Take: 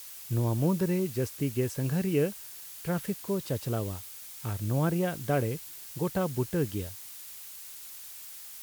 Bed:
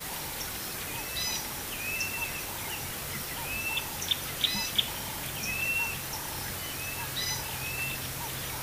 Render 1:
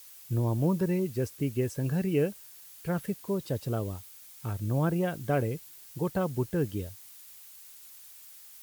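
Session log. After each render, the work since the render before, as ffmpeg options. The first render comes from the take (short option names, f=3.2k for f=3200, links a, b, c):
-af "afftdn=nr=7:nf=-45"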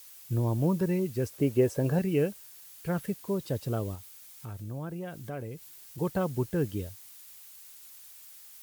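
-filter_complex "[0:a]asettb=1/sr,asplit=3[a][b][c];[a]atrim=end=1.334[d];[b]atrim=start=1.33:end=1.99,asetpts=PTS-STARTPTS,afade=t=in:d=0.004:c=qsin,afade=t=out:st=0.656:d=0.004:c=qsin,equalizer=f=590:t=o:w=1.7:g=10.5[e];[c]atrim=start=1.986[f];[d][e]acrossfade=d=0.004:c1=hsin:c2=qsin[g];[g][f]acrossfade=d=0.004:c1=qsin:c2=hsin,asettb=1/sr,asplit=3[h][i][j];[h]atrim=end=3.954[k];[i]atrim=start=3.95:end=5.98,asetpts=PTS-STARTPTS,afade=t=in:d=0.004:c=qsin,afade=t=out:st=2.026:d=0.004:c=qsin,acompressor=threshold=-42dB:ratio=2:attack=3.2:release=140:knee=1:detection=peak[l];[j]atrim=start=5.976[m];[k][l]acrossfade=d=0.004:c1=hsin:c2=qsin[n];[n][m]acrossfade=d=0.004:c1=qsin:c2=hsin"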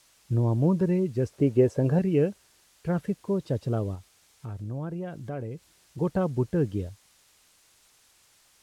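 -af "lowpass=7.8k,tiltshelf=f=1.3k:g=4"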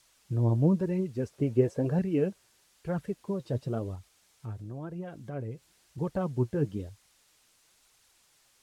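-af "flanger=delay=0.4:depth=8.8:regen=46:speed=1:shape=triangular"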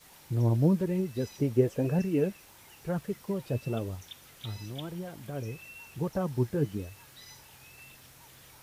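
-filter_complex "[1:a]volume=-18.5dB[a];[0:a][a]amix=inputs=2:normalize=0"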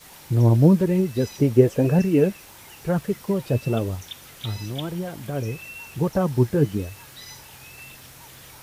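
-af "volume=9dB"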